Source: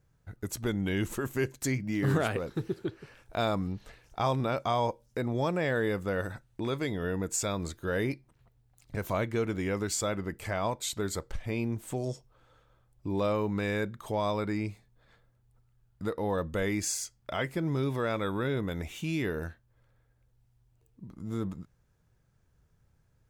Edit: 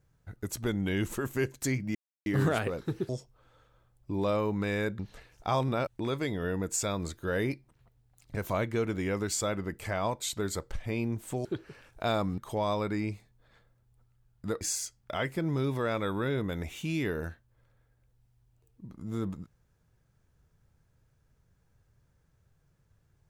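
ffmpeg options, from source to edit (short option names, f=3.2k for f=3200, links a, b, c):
-filter_complex "[0:a]asplit=8[a][b][c][d][e][f][g][h];[a]atrim=end=1.95,asetpts=PTS-STARTPTS,afade=t=out:st=1.946:d=0.004:c=hsin,apad=pad_dur=0.31[i];[b]atrim=start=1.95:end=2.782,asetpts=PTS-STARTPTS,afade=t=in:d=0.004:c=hsin[j];[c]atrim=start=12.048:end=13.952[k];[d]atrim=start=3.708:end=4.592[l];[e]atrim=start=6.468:end=12.052[m];[f]atrim=start=2.778:end=3.712[n];[g]atrim=start=13.948:end=16.182[o];[h]atrim=start=16.798[p];[i][j]concat=n=2:v=0:a=1[q];[q][k]acrossfade=d=0.004:c1=hsin:c2=hsin[r];[r][l]acrossfade=d=0.004:c1=hsin:c2=hsin[s];[s][m]acrossfade=d=0.004:c1=hsin:c2=hsin[t];[t][n]acrossfade=d=0.004:c1=hsin:c2=hsin[u];[u][o]acrossfade=d=0.004:c1=hsin:c2=hsin[v];[v][p]acrossfade=d=0.004:c1=hsin:c2=hsin"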